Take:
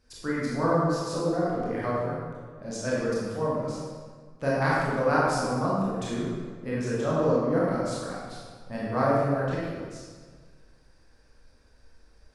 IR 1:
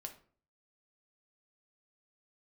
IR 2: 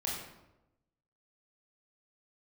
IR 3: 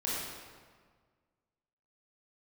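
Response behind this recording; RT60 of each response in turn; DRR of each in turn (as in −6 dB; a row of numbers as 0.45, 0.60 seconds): 3; 0.45, 0.95, 1.6 seconds; 3.5, −4.5, −7.5 decibels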